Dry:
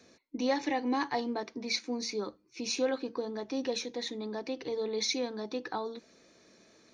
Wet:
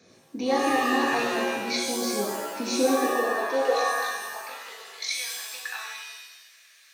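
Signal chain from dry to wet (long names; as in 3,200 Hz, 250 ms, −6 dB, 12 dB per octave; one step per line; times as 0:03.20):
high-pass filter sweep 120 Hz → 1,800 Hz, 0:01.92–0:05.13
0:03.77–0:05.19: amplitude modulation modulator 47 Hz, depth 95%
reverb with rising layers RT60 1 s, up +7 semitones, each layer −2 dB, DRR −2.5 dB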